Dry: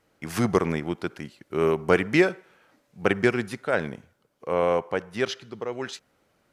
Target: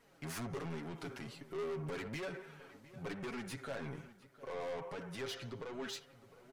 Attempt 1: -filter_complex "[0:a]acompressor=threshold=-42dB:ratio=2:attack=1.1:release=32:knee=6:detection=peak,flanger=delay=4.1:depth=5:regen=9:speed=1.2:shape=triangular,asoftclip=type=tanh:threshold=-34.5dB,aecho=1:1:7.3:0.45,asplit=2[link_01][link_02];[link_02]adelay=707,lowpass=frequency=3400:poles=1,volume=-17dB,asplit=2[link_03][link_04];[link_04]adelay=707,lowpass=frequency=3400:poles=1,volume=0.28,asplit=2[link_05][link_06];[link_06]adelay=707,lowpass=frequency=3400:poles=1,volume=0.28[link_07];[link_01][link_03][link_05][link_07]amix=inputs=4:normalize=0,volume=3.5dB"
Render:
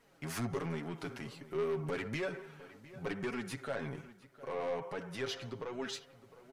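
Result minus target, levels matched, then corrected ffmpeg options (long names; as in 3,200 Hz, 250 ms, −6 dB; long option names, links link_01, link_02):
soft clipping: distortion −7 dB
-filter_complex "[0:a]acompressor=threshold=-42dB:ratio=2:attack=1.1:release=32:knee=6:detection=peak,flanger=delay=4.1:depth=5:regen=9:speed=1.2:shape=triangular,asoftclip=type=tanh:threshold=-43dB,aecho=1:1:7.3:0.45,asplit=2[link_01][link_02];[link_02]adelay=707,lowpass=frequency=3400:poles=1,volume=-17dB,asplit=2[link_03][link_04];[link_04]adelay=707,lowpass=frequency=3400:poles=1,volume=0.28,asplit=2[link_05][link_06];[link_06]adelay=707,lowpass=frequency=3400:poles=1,volume=0.28[link_07];[link_01][link_03][link_05][link_07]amix=inputs=4:normalize=0,volume=3.5dB"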